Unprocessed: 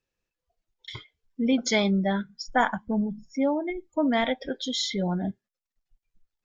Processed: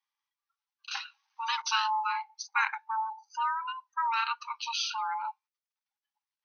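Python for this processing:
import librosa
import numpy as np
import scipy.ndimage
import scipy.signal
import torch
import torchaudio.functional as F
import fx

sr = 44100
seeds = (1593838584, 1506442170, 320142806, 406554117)

y = x * np.sin(2.0 * np.pi * 670.0 * np.arange(len(x)) / sr)
y = fx.brickwall_bandpass(y, sr, low_hz=790.0, high_hz=6400.0)
y = fx.spectral_comp(y, sr, ratio=2.0, at=(0.91, 1.62))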